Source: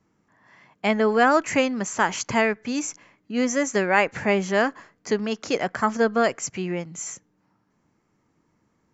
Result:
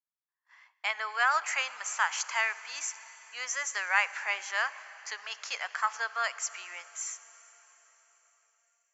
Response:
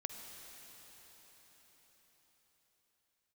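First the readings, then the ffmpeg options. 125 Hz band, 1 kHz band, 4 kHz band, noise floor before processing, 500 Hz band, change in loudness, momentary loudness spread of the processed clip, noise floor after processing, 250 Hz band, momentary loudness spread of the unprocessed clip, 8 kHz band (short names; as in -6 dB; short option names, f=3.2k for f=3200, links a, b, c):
under -40 dB, -7.5 dB, -3.0 dB, -69 dBFS, -23.0 dB, -8.0 dB, 13 LU, -85 dBFS, under -40 dB, 11 LU, n/a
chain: -filter_complex "[0:a]highpass=f=1k:w=0.5412,highpass=f=1k:w=1.3066,agate=range=-28dB:threshold=-56dB:ratio=16:detection=peak,asplit=2[a][b];[1:a]atrim=start_sample=2205,asetrate=52920,aresample=44100[c];[b][c]afir=irnorm=-1:irlink=0,volume=-4.5dB[d];[a][d]amix=inputs=2:normalize=0,volume=-6dB"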